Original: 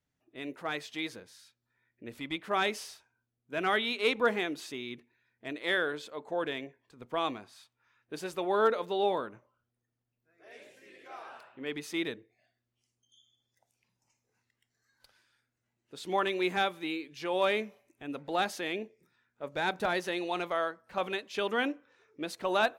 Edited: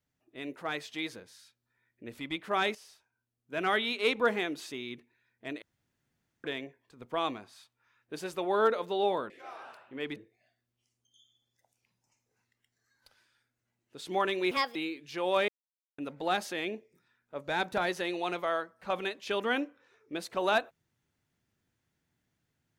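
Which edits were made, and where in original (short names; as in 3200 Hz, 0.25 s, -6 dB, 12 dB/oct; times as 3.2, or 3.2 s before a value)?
2.75–3.62 fade in, from -13.5 dB
5.62–6.44 room tone
9.3–10.96 cut
11.82–12.14 cut
16.49–16.83 speed 140%
17.56–18.06 mute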